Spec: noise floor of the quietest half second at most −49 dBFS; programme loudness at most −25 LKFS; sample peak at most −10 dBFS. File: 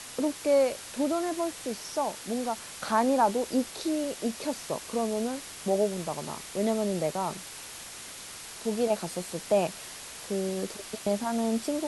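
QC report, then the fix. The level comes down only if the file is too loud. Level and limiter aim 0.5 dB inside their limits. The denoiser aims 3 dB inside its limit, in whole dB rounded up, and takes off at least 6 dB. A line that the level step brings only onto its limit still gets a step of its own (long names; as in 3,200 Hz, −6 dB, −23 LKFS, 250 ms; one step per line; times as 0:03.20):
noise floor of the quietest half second −43 dBFS: out of spec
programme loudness −30.0 LKFS: in spec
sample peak −12.0 dBFS: in spec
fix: broadband denoise 9 dB, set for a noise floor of −43 dBFS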